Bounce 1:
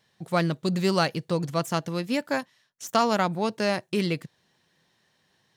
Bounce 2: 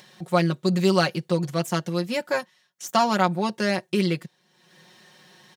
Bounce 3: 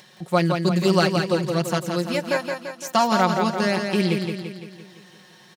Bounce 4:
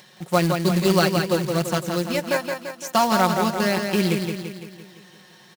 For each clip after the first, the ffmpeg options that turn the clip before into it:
-af "highpass=140,aecho=1:1:5.5:0.79,acompressor=mode=upward:threshold=0.01:ratio=2.5"
-af "aecho=1:1:170|340|510|680|850|1020|1190:0.531|0.287|0.155|0.0836|0.0451|0.0244|0.0132,volume=1.12"
-af "acrusher=bits=3:mode=log:mix=0:aa=0.000001"

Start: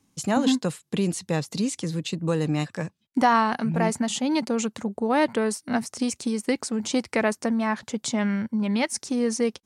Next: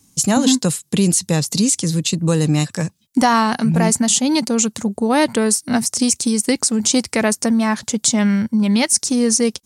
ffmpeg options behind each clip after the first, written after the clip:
-filter_complex "[0:a]bass=f=250:g=6,treble=f=4000:g=14,asplit=2[s0][s1];[s1]alimiter=limit=0.266:level=0:latency=1:release=107,volume=1[s2];[s0][s2]amix=inputs=2:normalize=0,volume=0.891"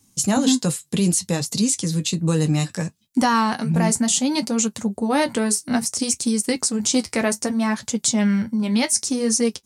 -af "flanger=delay=8.4:depth=4.7:regen=-47:speed=0.63:shape=triangular"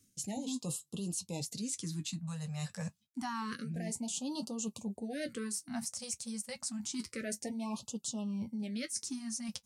-af "areverse,acompressor=threshold=0.0398:ratio=8,areverse,afftfilt=real='re*(1-between(b*sr/1024,310*pow(1900/310,0.5+0.5*sin(2*PI*0.28*pts/sr))/1.41,310*pow(1900/310,0.5+0.5*sin(2*PI*0.28*pts/sr))*1.41))':imag='im*(1-between(b*sr/1024,310*pow(1900/310,0.5+0.5*sin(2*PI*0.28*pts/sr))/1.41,310*pow(1900/310,0.5+0.5*sin(2*PI*0.28*pts/sr))*1.41))':win_size=1024:overlap=0.75,volume=0.422"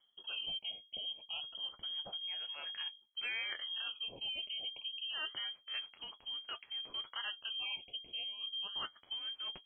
-filter_complex "[0:a]bandreject=f=50:t=h:w=6,bandreject=f=100:t=h:w=6,bandreject=f=150:t=h:w=6,bandreject=f=200:t=h:w=6,lowpass=f=2900:t=q:w=0.5098,lowpass=f=2900:t=q:w=0.6013,lowpass=f=2900:t=q:w=0.9,lowpass=f=2900:t=q:w=2.563,afreqshift=-3400,acrossover=split=2600[s0][s1];[s1]acompressor=threshold=0.00501:ratio=4:attack=1:release=60[s2];[s0][s2]amix=inputs=2:normalize=0,volume=1.19"

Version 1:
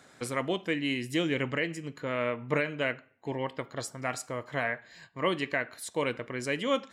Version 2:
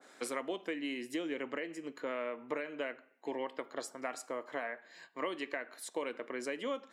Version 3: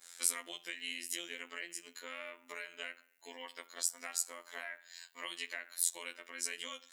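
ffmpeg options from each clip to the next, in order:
-af "highpass=f=260:w=0.5412,highpass=f=260:w=1.3066,acompressor=threshold=0.0251:ratio=6,adynamicequalizer=threshold=0.00251:dfrequency=1700:dqfactor=0.7:tfrequency=1700:tqfactor=0.7:attack=5:release=100:ratio=0.375:range=3:mode=cutabove:tftype=highshelf,volume=0.891"
-af "afftfilt=real='hypot(re,im)*cos(PI*b)':imag='0':win_size=2048:overlap=0.75,tiltshelf=f=1200:g=-10,crystalizer=i=3:c=0,volume=0.596"

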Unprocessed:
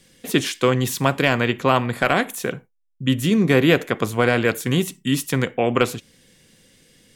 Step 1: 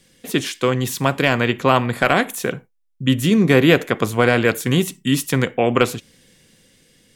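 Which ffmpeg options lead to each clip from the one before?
-af "dynaudnorm=f=260:g=9:m=3.76,volume=0.891"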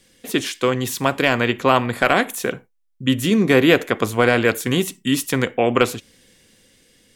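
-af "equalizer=f=150:w=2.6:g=-7.5"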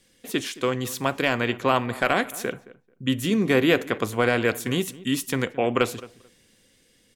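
-filter_complex "[0:a]asplit=2[s0][s1];[s1]adelay=219,lowpass=f=1800:p=1,volume=0.119,asplit=2[s2][s3];[s3]adelay=219,lowpass=f=1800:p=1,volume=0.17[s4];[s0][s2][s4]amix=inputs=3:normalize=0,volume=0.531"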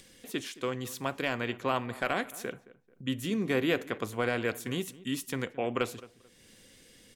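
-af "acompressor=mode=upward:threshold=0.0158:ratio=2.5,volume=0.376"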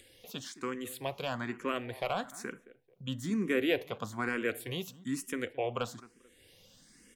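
-filter_complex "[0:a]asplit=2[s0][s1];[s1]afreqshift=1.1[s2];[s0][s2]amix=inputs=2:normalize=1"

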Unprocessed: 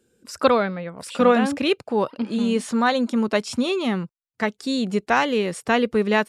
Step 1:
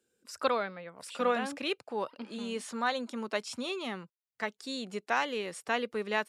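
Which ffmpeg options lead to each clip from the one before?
-filter_complex "[0:a]lowshelf=f=330:g=-12,acrossover=split=140[s0][s1];[s0]acompressor=threshold=0.00178:ratio=6[s2];[s2][s1]amix=inputs=2:normalize=0,volume=0.376"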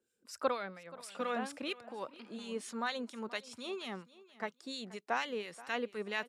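-filter_complex "[0:a]acrossover=split=1500[s0][s1];[s0]aeval=exprs='val(0)*(1-0.7/2+0.7/2*cos(2*PI*4.3*n/s))':c=same[s2];[s1]aeval=exprs='val(0)*(1-0.7/2-0.7/2*cos(2*PI*4.3*n/s))':c=same[s3];[s2][s3]amix=inputs=2:normalize=0,aecho=1:1:479|958:0.112|0.0236,volume=0.794"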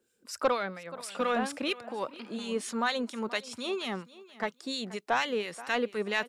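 -af "asoftclip=type=tanh:threshold=0.0596,volume=2.51"

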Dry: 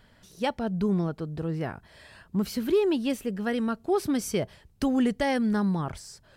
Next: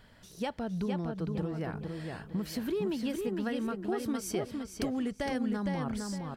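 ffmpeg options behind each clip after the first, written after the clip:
-filter_complex "[0:a]acompressor=threshold=0.0251:ratio=4,asplit=2[s0][s1];[s1]adelay=460,lowpass=f=4700:p=1,volume=0.631,asplit=2[s2][s3];[s3]adelay=460,lowpass=f=4700:p=1,volume=0.34,asplit=2[s4][s5];[s5]adelay=460,lowpass=f=4700:p=1,volume=0.34,asplit=2[s6][s7];[s7]adelay=460,lowpass=f=4700:p=1,volume=0.34[s8];[s2][s4][s6][s8]amix=inputs=4:normalize=0[s9];[s0][s9]amix=inputs=2:normalize=0"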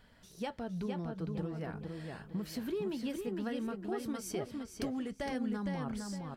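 -af "flanger=delay=4:depth=3.8:regen=-70:speed=0.54:shape=sinusoidal"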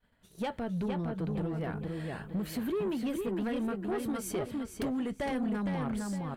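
-af "equalizer=f=5300:w=2.3:g=-10.5,asoftclip=type=tanh:threshold=0.02,agate=range=0.0224:threshold=0.00251:ratio=3:detection=peak,volume=2.24"

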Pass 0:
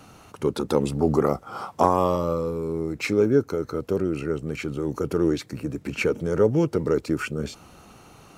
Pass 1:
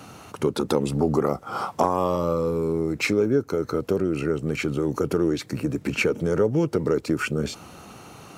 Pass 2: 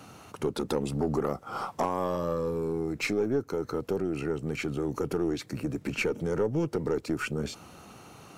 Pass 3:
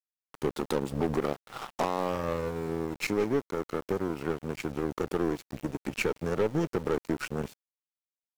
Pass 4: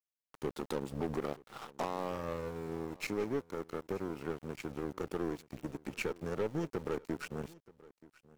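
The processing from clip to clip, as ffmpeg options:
-af "highpass=77,acompressor=threshold=0.0501:ratio=2.5,volume=1.88"
-af "aeval=exprs='0.562*(cos(1*acos(clip(val(0)/0.562,-1,1)))-cos(1*PI/2))+0.0224*(cos(6*acos(clip(val(0)/0.562,-1,1)))-cos(6*PI/2))':c=same,asoftclip=type=tanh:threshold=0.282,volume=0.531"
-af "aecho=1:1:176:0.0944,aeval=exprs='val(0)*gte(abs(val(0)),0.02)':c=same,aeval=exprs='0.15*(cos(1*acos(clip(val(0)/0.15,-1,1)))-cos(1*PI/2))+0.0168*(cos(7*acos(clip(val(0)/0.15,-1,1)))-cos(7*PI/2))':c=same"
-af "aecho=1:1:929:0.0841,volume=0.422"

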